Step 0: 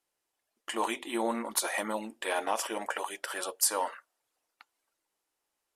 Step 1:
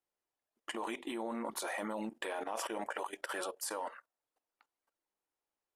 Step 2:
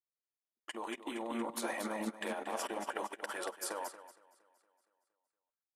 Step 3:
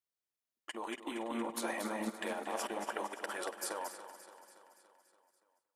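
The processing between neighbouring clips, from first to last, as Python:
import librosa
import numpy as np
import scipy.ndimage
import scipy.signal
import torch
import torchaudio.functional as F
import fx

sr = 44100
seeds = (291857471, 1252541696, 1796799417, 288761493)

y1 = fx.high_shelf(x, sr, hz=2100.0, db=-9.0)
y1 = fx.level_steps(y1, sr, step_db=14)
y1 = y1 * 10.0 ** (3.5 / 20.0)
y2 = fx.echo_feedback(y1, sr, ms=232, feedback_pct=55, wet_db=-6.0)
y2 = fx.upward_expand(y2, sr, threshold_db=-48.0, expansion=2.5)
y2 = y2 * 10.0 ** (2.5 / 20.0)
y3 = fx.echo_feedback(y2, sr, ms=285, feedback_pct=58, wet_db=-13.5)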